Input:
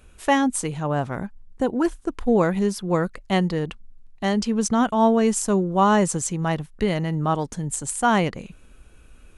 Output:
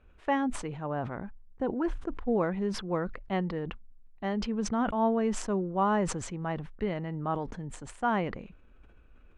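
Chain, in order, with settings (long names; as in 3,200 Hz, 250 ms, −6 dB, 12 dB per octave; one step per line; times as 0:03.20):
low-pass filter 2,200 Hz 12 dB per octave
parametric band 140 Hz −3.5 dB 0.77 octaves
level that may fall only so fast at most 71 dB per second
level −8.5 dB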